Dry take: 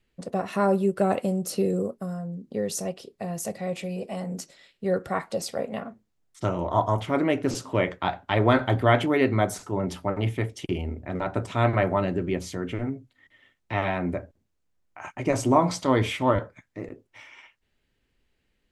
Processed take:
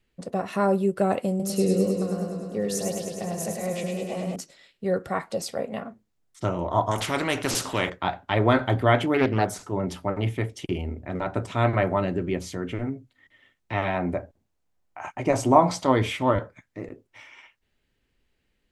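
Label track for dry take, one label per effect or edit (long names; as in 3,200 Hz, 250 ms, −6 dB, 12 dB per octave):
1.290000	4.360000	feedback echo with a swinging delay time 103 ms, feedback 75%, depth 69 cents, level −4.5 dB
6.910000	7.900000	every bin compressed towards the loudest bin 2 to 1
9.140000	9.720000	highs frequency-modulated by the lows depth 0.39 ms
13.940000	15.920000	parametric band 770 Hz +6 dB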